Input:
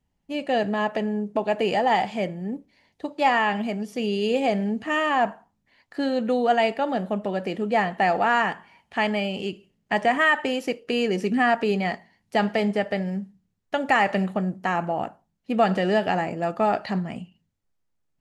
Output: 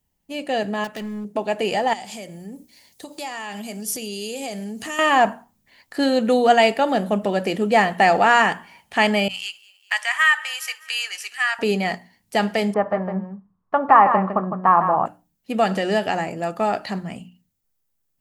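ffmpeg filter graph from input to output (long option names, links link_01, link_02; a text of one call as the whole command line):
ffmpeg -i in.wav -filter_complex "[0:a]asettb=1/sr,asplit=3[link_01][link_02][link_03];[link_01]atrim=end=0.844[link_04];[link_02]atrim=start=0.84:end=1.25,asetpts=PTS-STARTPTS,afade=type=in:duration=0.004:curve=qsin,afade=type=out:start_time=0.406:duration=0.004:curve=qsin,equalizer=frequency=640:width_type=o:width=1.8:gain=-7.5,asoftclip=type=hard:threshold=-26dB[link_05];[link_03]atrim=start=1.246[link_06];[link_04][link_05]acrossfade=duration=0.004:curve1=hsin:curve2=qsin[link_07];[link_07][link_06]acrossfade=duration=0.004:curve1=qsin:curve2=hsin,asettb=1/sr,asplit=3[link_08][link_09][link_10];[link_08]atrim=end=1.934[link_11];[link_09]atrim=start=1.93:end=4.99,asetpts=PTS-STARTPTS,afade=type=in:duration=0.004:curve=qsin,afade=type=out:start_time=3.056:duration=0.004:curve=qsin,bass=frequency=250:gain=0,treble=frequency=4000:gain=13,acompressor=threshold=-35dB:ratio=4:attack=3.2:release=140:knee=1:detection=peak[link_12];[link_10]atrim=start=4.986[link_13];[link_11][link_12]acrossfade=duration=0.004:curve1=hsin:curve2=qsin[link_14];[link_14][link_13]acrossfade=duration=0.004:curve1=qsin:curve2=hsin,asettb=1/sr,asplit=3[link_15][link_16][link_17];[link_15]atrim=end=9.284[link_18];[link_16]atrim=start=9.28:end=11.59,asetpts=PTS-STARTPTS,afade=type=in:duration=0.004:curve=qsin,afade=type=out:start_time=2.306:duration=0.004:curve=qsin,highpass=frequency=1200:width=0.5412,highpass=frequency=1200:width=1.3066,aecho=1:1:203|406|609|812:0.0794|0.0469|0.0277|0.0163,atrim=end_sample=101871,adynamicequalizer=threshold=0.0251:dfrequency=2000:dqfactor=0.7:tfrequency=2000:tqfactor=0.7:attack=5:release=100:ratio=0.375:range=2.5:mode=cutabove:tftype=highshelf[link_19];[link_17]atrim=start=11.586[link_20];[link_18][link_19]acrossfade=duration=0.004:curve1=hsin:curve2=qsin[link_21];[link_21][link_20]acrossfade=duration=0.004:curve1=qsin:curve2=hsin,asettb=1/sr,asplit=3[link_22][link_23][link_24];[link_22]atrim=end=12.744[link_25];[link_23]atrim=start=12.74:end=15.06,asetpts=PTS-STARTPTS,afade=type=in:duration=0.004:curve=qsin,afade=type=out:start_time=2.316:duration=0.004:curve=qsin,lowpass=frequency=1100:width_type=q:width=7.7,aecho=1:1:157:0.398,atrim=end_sample=102312[link_26];[link_24]atrim=start=15.056[link_27];[link_25][link_26]acrossfade=duration=0.004:curve1=hsin:curve2=qsin[link_28];[link_28][link_27]acrossfade=duration=0.004:curve1=qsin:curve2=hsin,aemphasis=mode=production:type=50fm,bandreject=frequency=60:width_type=h:width=6,bandreject=frequency=120:width_type=h:width=6,bandreject=frequency=180:width_type=h:width=6,bandreject=frequency=240:width_type=h:width=6,bandreject=frequency=300:width_type=h:width=6,dynaudnorm=framelen=950:gausssize=7:maxgain=7.5dB" out.wav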